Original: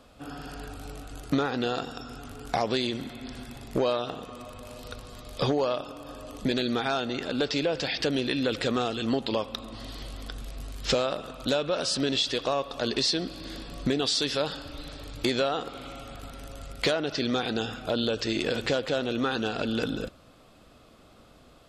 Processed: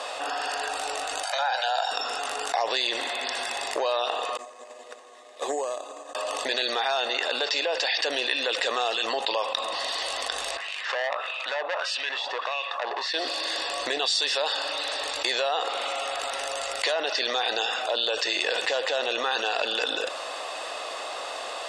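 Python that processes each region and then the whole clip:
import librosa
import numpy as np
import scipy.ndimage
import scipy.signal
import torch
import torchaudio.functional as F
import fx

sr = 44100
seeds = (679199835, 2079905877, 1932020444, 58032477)

y = fx.chain(x, sr, fx.steep_highpass(hz=530.0, slope=72),
    fx.comb(ms=1.3, depth=0.82), at=(1.23, 1.91))
y = fx.chain(y, sr, fx.cabinet(low_hz=160.0, low_slope=24, high_hz=3000.0, hz=(240.0, 340.0, 580.0, 900.0, 1400.0, 2700.0), db=(5, 5, -4, -8, -9, -9)),
    fx.resample_bad(factor=6, down='none', up='hold'),
    fx.upward_expand(threshold_db=-45.0, expansion=2.5), at=(4.37, 6.15))
y = fx.chain(y, sr, fx.low_shelf(hz=440.0, db=10.5),
    fx.wah_lfo(hz=1.6, low_hz=790.0, high_hz=2700.0, q=3.4),
    fx.transformer_sat(knee_hz=1900.0), at=(10.57, 13.14))
y = scipy.signal.sosfilt(scipy.signal.ellip(3, 1.0, 40, [480.0, 9000.0], 'bandpass', fs=sr, output='sos'), y)
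y = y + 0.47 * np.pad(y, (int(1.1 * sr / 1000.0), 0))[:len(y)]
y = fx.env_flatten(y, sr, amount_pct=70)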